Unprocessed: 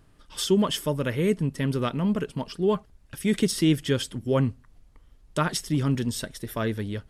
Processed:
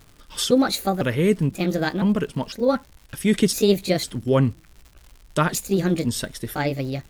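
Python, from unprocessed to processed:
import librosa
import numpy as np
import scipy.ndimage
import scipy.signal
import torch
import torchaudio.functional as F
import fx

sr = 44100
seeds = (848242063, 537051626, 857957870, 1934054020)

y = fx.pitch_trill(x, sr, semitones=4.5, every_ms=504)
y = fx.dmg_crackle(y, sr, seeds[0], per_s=180.0, level_db=-42.0)
y = y * 10.0 ** (4.5 / 20.0)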